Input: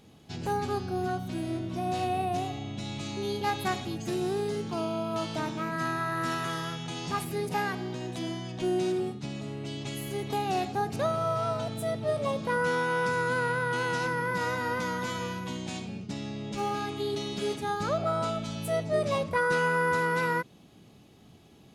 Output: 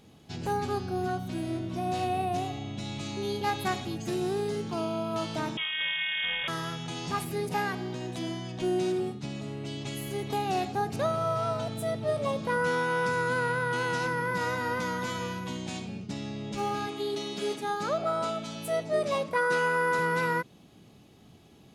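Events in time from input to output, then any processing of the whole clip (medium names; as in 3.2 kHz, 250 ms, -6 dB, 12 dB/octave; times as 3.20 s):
5.57–6.48 s: frequency inversion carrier 3.5 kHz
16.87–19.99 s: high-pass 210 Hz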